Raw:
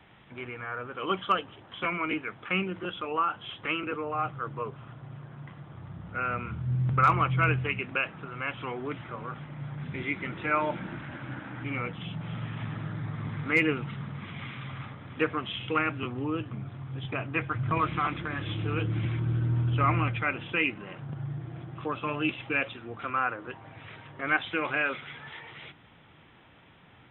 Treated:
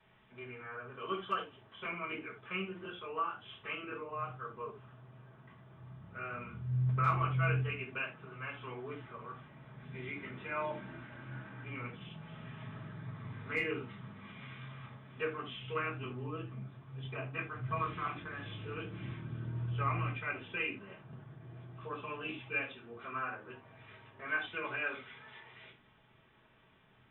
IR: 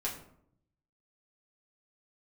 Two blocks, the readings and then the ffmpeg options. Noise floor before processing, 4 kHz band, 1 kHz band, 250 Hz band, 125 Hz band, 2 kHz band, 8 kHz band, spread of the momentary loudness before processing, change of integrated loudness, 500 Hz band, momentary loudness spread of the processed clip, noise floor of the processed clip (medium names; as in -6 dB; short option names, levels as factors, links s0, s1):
-56 dBFS, -9.5 dB, -9.0 dB, -11.5 dB, -7.5 dB, -8.5 dB, no reading, 16 LU, -8.5 dB, -8.0 dB, 17 LU, -65 dBFS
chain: -filter_complex "[1:a]atrim=start_sample=2205,atrim=end_sample=6615,asetrate=66150,aresample=44100[s0];[0:a][s0]afir=irnorm=-1:irlink=0,volume=0.355"